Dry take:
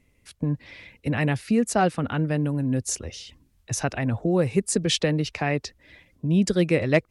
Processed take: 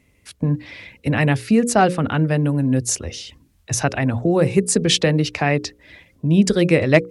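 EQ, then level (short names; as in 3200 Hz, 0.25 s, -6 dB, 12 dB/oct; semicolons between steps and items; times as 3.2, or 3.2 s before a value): HPF 45 Hz; notches 60/120/180/240/300/360/420/480/540 Hz; +6.5 dB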